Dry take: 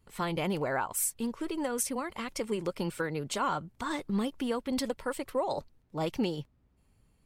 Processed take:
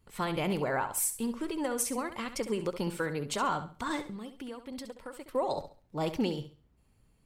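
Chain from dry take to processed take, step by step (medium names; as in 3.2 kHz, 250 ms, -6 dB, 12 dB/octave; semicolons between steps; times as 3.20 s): 4.02–5.34 s: compression 3:1, threshold -43 dBFS, peak gain reduction 12.5 dB; on a send: flutter echo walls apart 11.6 m, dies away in 0.37 s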